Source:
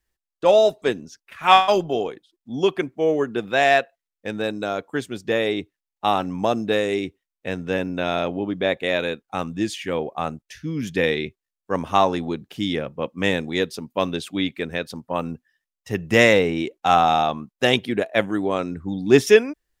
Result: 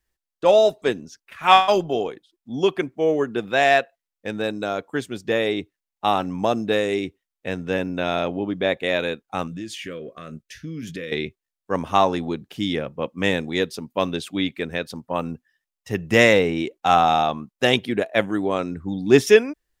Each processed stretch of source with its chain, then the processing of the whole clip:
9.47–11.12 s: doubling 18 ms -11.5 dB + compression 5:1, threshold -29 dBFS + Butterworth band-stop 840 Hz, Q 1.6
whole clip: none

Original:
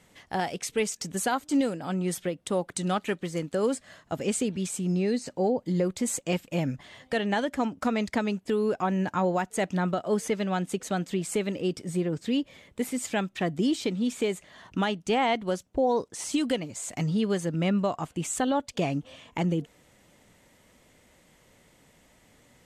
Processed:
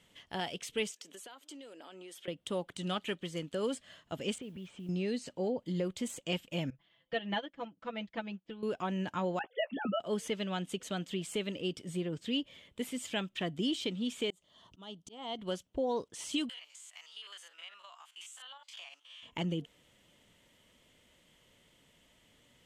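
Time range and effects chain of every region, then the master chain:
0.91–2.28 s: high-pass 310 Hz 24 dB/octave + compression 16:1, threshold -38 dBFS
4.38–4.89 s: low-pass 2.2 kHz + modulation noise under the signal 32 dB + compression 4:1, threshold -34 dBFS
6.70–8.63 s: distance through air 190 m + comb 6 ms, depth 77% + upward expansion 2.5:1, over -33 dBFS
9.39–10.00 s: formants replaced by sine waves + doubling 15 ms -9.5 dB
14.30–15.39 s: slow attack 457 ms + high-order bell 2 kHz -10 dB 1.1 oct
16.49–19.23 s: spectrogram pixelated in time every 50 ms + high-pass 980 Hz 24 dB/octave + compression 4:1, threshold -42 dBFS
whole clip: band-stop 780 Hz, Q 12; de-esser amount 60%; peaking EQ 3.1 kHz +11.5 dB 0.44 oct; trim -8 dB

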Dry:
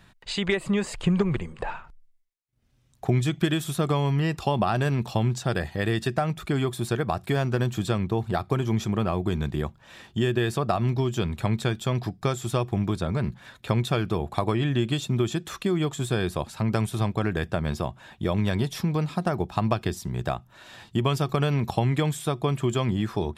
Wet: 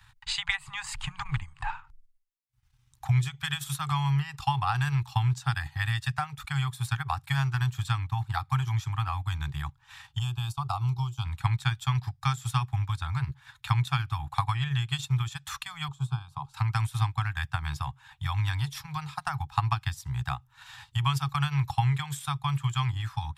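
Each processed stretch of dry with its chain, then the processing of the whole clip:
10.19–11.25 s: gate -33 dBFS, range -9 dB + static phaser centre 760 Hz, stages 4
15.88–16.54 s: low-pass 1.5 kHz 6 dB/octave + static phaser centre 370 Hz, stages 8
whole clip: Chebyshev band-stop 140–800 Hz, order 5; transient shaper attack +3 dB, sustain -7 dB

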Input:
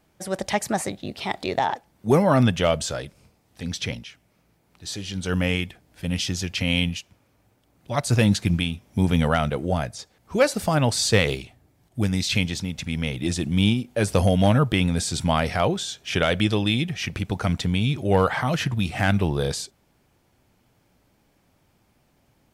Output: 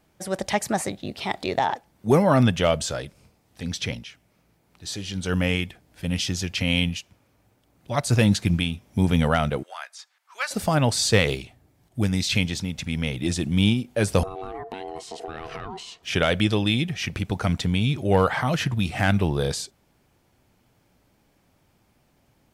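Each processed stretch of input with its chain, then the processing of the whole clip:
9.63–10.51 s: high-pass 1.1 kHz 24 dB/octave + tilt EQ -2 dB/octave
14.23–16.03 s: ring modulator 570 Hz + compression 16:1, threshold -29 dBFS + treble shelf 4.9 kHz -12 dB
whole clip: none

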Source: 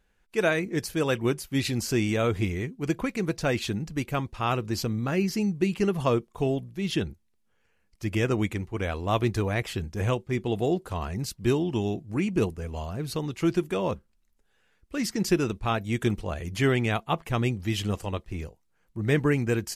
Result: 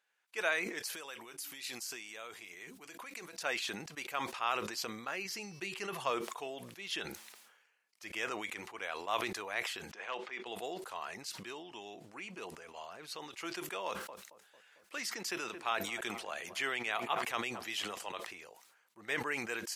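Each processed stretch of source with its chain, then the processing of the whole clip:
0.94–3.43 s: treble shelf 5 kHz +8.5 dB + de-hum 95.48 Hz, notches 3 + compression 8:1, threshold -32 dBFS
5.25–6.10 s: peaking EQ 120 Hz +12.5 dB 0.63 oct + de-hum 377.1 Hz, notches 16 + tape noise reduction on one side only encoder only
9.91–10.46 s: bass shelf 460 Hz -9 dB + hard clipper -20.5 dBFS + band-pass 180–3600 Hz
11.15–13.23 s: treble shelf 11 kHz -8.5 dB + compression 2:1, threshold -26 dBFS
13.86–18.12 s: filtered feedback delay 224 ms, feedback 60%, low-pass 1 kHz, level -19 dB + three bands compressed up and down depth 40%
whole clip: high-pass 870 Hz 12 dB/octave; treble shelf 9.7 kHz -4 dB; decay stretcher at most 50 dB/s; trim -4.5 dB

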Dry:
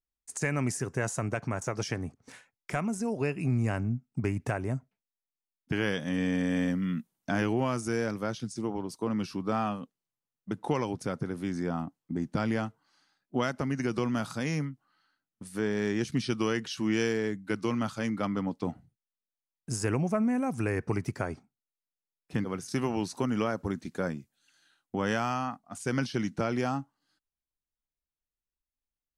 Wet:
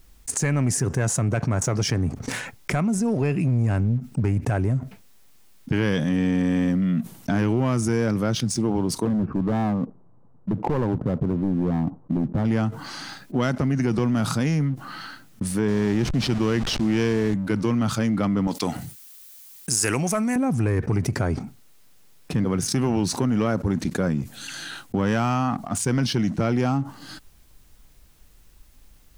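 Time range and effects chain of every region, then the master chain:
9.05–12.45 s: inverse Chebyshev low-pass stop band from 3.5 kHz, stop band 60 dB + overload inside the chain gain 28.5 dB
15.68–17.34 s: send-on-delta sampling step -37 dBFS + low-pass 7.3 kHz
18.47–20.36 s: tilt EQ +4.5 dB/octave + de-esser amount 35%
whole clip: bass shelf 270 Hz +10 dB; waveshaping leveller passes 1; level flattener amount 70%; trim -4 dB

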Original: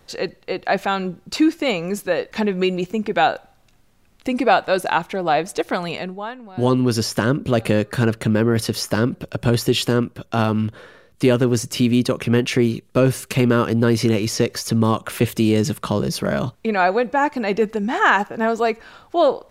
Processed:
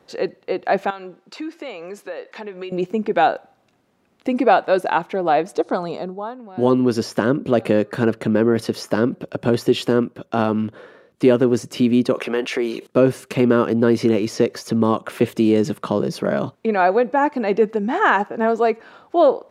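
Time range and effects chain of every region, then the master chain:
0.90–2.72 s: frequency weighting A + compression 2.5:1, threshold -32 dBFS
5.57–6.39 s: steep low-pass 9.7 kHz + high-order bell 2.3 kHz -10.5 dB 1.1 oct
12.14–12.87 s: high-pass 510 Hz + level flattener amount 50%
whole clip: high-pass 300 Hz 12 dB/octave; tilt EQ -3 dB/octave

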